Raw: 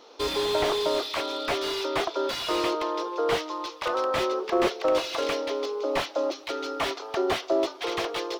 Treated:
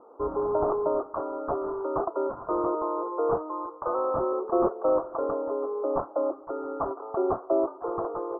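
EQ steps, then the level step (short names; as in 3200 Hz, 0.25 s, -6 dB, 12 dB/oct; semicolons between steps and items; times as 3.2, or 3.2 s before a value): steep low-pass 1300 Hz 72 dB/oct; 0.0 dB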